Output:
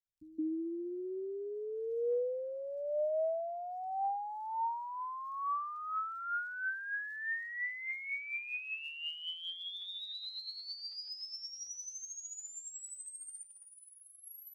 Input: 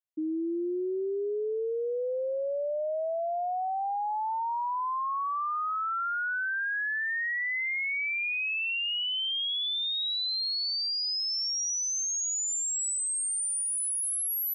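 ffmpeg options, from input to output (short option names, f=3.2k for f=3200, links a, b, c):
-filter_complex "[0:a]asettb=1/sr,asplit=3[a][b][c];[a]atrim=end=13.434[d];[b]atrim=start=13.43:end=14.24,asetpts=PTS-STARTPTS,afade=t=in:d=0.004:c=qsin,afade=t=out:st=0.806:d=0.004:c=qsin,acrossover=split=4800[e][f];[f]acompressor=threshold=-39dB:ratio=4:attack=1:release=60[g];[e][g]amix=inputs=2:normalize=0[h];[c]atrim=start=14.236[i];[d][h]acrossfade=d=0.004:c1=hsin:c2=qsin[j];[j][i]acrossfade=d=0.004:c1=qsin:c2=hsin,aemphasis=mode=reproduction:type=bsi,aphaser=in_gain=1:out_gain=1:delay=1.8:decay=0.52:speed=0.52:type=triangular,acrossover=split=180|3600[k][l][m];[k]adelay=40[n];[l]adelay=210[o];[n][o][m]amix=inputs=3:normalize=0,volume=-8dB"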